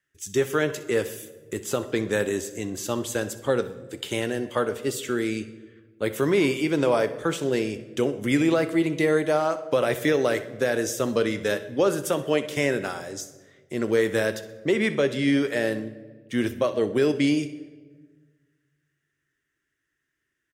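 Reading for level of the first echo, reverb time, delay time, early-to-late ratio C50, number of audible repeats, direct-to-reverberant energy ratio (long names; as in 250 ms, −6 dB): −17.0 dB, 1.4 s, 63 ms, 12.5 dB, 1, 10.5 dB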